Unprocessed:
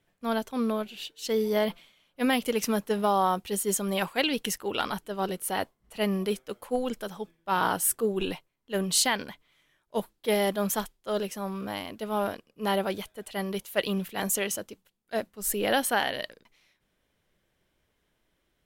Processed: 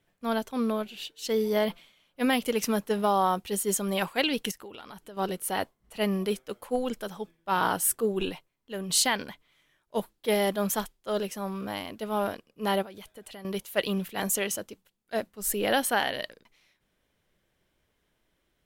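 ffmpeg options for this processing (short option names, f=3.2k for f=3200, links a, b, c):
-filter_complex "[0:a]asettb=1/sr,asplit=3[a][b][c];[a]atrim=end=4.514[d];[b]atrim=start=4.51:end=5.17,asetpts=PTS-STARTPTS,afade=t=in:d=0.004:c=qsin,afade=t=out:st=0.656:d=0.004:c=qsin,acompressor=threshold=-40dB:ratio=10:attack=3.2:release=140:knee=1:detection=peak[e];[c]atrim=start=5.166[f];[d][e]acrossfade=d=0.004:c1=hsin:c2=qsin[g];[g][f]acrossfade=d=0.004:c1=qsin:c2=hsin,asettb=1/sr,asplit=3[h][i][j];[h]atrim=end=8.294[k];[i]atrim=start=8.29:end=8.9,asetpts=PTS-STARTPTS,afade=t=in:d=0.004:c=qsin,afade=t=out:st=0.606:d=0.004:c=qsin,acompressor=threshold=-35dB:ratio=2:attack=3.2:release=140:knee=1:detection=peak[l];[j]atrim=start=8.896[m];[k][l]acrossfade=d=0.004:c1=hsin:c2=qsin[n];[n][m]acrossfade=d=0.004:c1=qsin:c2=hsin,asettb=1/sr,asplit=3[o][p][q];[o]atrim=end=12.824[r];[p]atrim=start=12.82:end=13.45,asetpts=PTS-STARTPTS,afade=t=in:d=0.004:c=qsin,afade=t=out:st=0.626:d=0.004:c=qsin,acompressor=threshold=-40dB:ratio=12:attack=3.2:release=140:knee=1:detection=peak[s];[q]atrim=start=13.446[t];[r][s]acrossfade=d=0.004:c1=hsin:c2=qsin[u];[u][t]acrossfade=d=0.004:c1=qsin:c2=hsin"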